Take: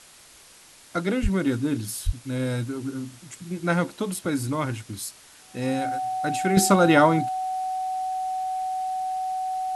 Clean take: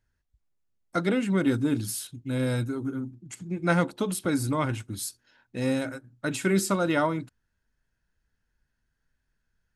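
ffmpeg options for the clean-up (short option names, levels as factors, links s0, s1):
-filter_complex "[0:a]bandreject=f=750:w=30,asplit=3[s0][s1][s2];[s0]afade=t=out:st=1.22:d=0.02[s3];[s1]highpass=f=140:w=0.5412,highpass=f=140:w=1.3066,afade=t=in:st=1.22:d=0.02,afade=t=out:st=1.34:d=0.02[s4];[s2]afade=t=in:st=1.34:d=0.02[s5];[s3][s4][s5]amix=inputs=3:normalize=0,asplit=3[s6][s7][s8];[s6]afade=t=out:st=2.05:d=0.02[s9];[s7]highpass=f=140:w=0.5412,highpass=f=140:w=1.3066,afade=t=in:st=2.05:d=0.02,afade=t=out:st=2.17:d=0.02[s10];[s8]afade=t=in:st=2.17:d=0.02[s11];[s9][s10][s11]amix=inputs=3:normalize=0,afwtdn=0.004,asetnsamples=n=441:p=0,asendcmd='6.57 volume volume -7.5dB',volume=1"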